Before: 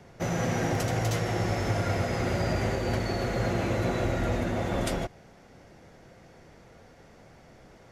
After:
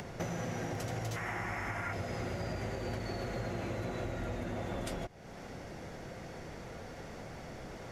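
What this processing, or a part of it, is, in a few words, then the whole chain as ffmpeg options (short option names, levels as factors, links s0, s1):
upward and downward compression: -filter_complex "[0:a]asettb=1/sr,asplit=3[s0][s1][s2];[s0]atrim=end=1.164[s3];[s1]atrim=start=1.16:end=1.93,asetpts=PTS-STARTPTS,afade=t=in:d=0.004:c=qsin,afade=t=out:st=0.766:d=0.004:c=qsin,equalizer=f=125:t=o:w=1:g=-6,equalizer=f=500:t=o:w=1:g=-8,equalizer=f=1000:t=o:w=1:g=7,equalizer=f=2000:t=o:w=1:g=10,equalizer=f=4000:t=o:w=1:g=-10[s4];[s2]atrim=start=1.926[s5];[s3][s4]acrossfade=d=0.004:c1=hsin:c2=qsin[s6];[s6][s5]acrossfade=d=0.004:c1=qsin:c2=hsin,acompressor=mode=upward:threshold=0.00447:ratio=2.5,acompressor=threshold=0.00708:ratio=5,volume=2"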